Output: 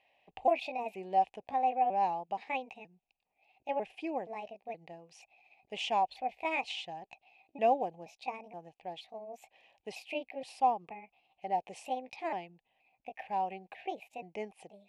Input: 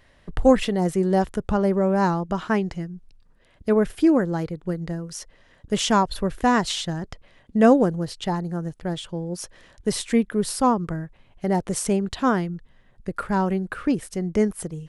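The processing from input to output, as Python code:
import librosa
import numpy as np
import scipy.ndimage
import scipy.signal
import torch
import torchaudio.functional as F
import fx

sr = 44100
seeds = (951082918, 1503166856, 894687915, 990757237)

y = fx.pitch_trill(x, sr, semitones=4.5, every_ms=474)
y = fx.double_bandpass(y, sr, hz=1400.0, octaves=1.7)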